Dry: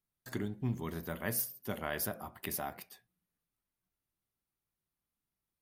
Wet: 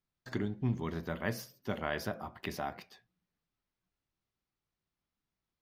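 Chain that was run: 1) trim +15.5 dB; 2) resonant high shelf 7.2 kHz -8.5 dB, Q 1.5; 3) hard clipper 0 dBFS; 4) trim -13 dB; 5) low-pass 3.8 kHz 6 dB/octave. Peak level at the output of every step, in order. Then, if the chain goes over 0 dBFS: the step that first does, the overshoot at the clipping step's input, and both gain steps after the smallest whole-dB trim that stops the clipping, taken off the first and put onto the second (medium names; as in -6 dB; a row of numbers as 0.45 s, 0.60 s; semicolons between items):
-4.0 dBFS, -4.5 dBFS, -4.5 dBFS, -17.5 dBFS, -18.0 dBFS; nothing clips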